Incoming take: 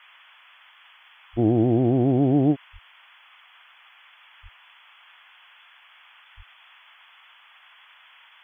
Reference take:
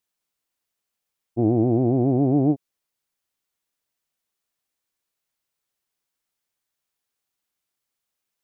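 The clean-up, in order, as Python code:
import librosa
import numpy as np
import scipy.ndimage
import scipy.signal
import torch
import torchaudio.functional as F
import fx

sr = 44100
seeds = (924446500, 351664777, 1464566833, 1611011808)

y = fx.fix_deplosive(x, sr, at_s=(1.32, 2.72, 4.42, 6.36))
y = fx.noise_reduce(y, sr, print_start_s=3.71, print_end_s=4.21, reduce_db=29.0)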